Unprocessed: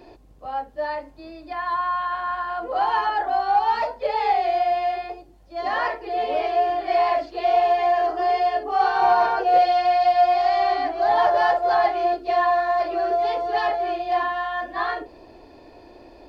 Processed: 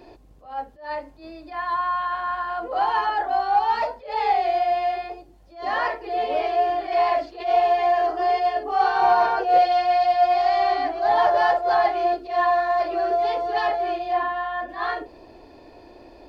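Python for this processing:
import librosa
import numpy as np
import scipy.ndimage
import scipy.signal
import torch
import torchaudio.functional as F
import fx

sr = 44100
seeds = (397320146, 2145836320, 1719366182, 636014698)

y = fx.high_shelf(x, sr, hz=3900.0, db=-11.5, at=(14.11, 14.68), fade=0.02)
y = fx.attack_slew(y, sr, db_per_s=150.0)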